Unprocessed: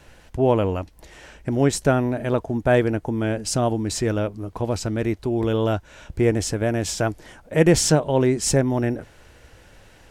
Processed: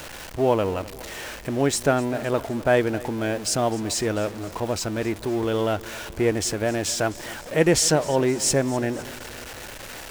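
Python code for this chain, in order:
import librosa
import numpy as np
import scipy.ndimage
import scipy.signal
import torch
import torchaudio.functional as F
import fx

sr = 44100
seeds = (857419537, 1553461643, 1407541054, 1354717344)

y = x + 0.5 * 10.0 ** (-31.0 / 20.0) * np.sign(x)
y = fx.low_shelf(y, sr, hz=250.0, db=-9.0)
y = fx.echo_feedback(y, sr, ms=256, feedback_pct=56, wet_db=-19.0)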